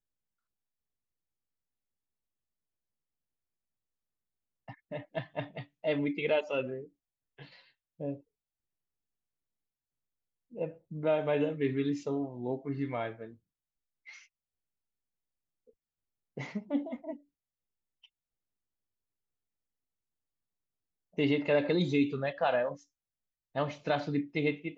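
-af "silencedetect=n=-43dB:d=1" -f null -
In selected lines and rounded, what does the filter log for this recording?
silence_start: 0.00
silence_end: 4.68 | silence_duration: 4.68
silence_start: 8.17
silence_end: 10.54 | silence_duration: 2.37
silence_start: 14.18
silence_end: 16.37 | silence_duration: 2.19
silence_start: 17.16
silence_end: 21.18 | silence_duration: 4.02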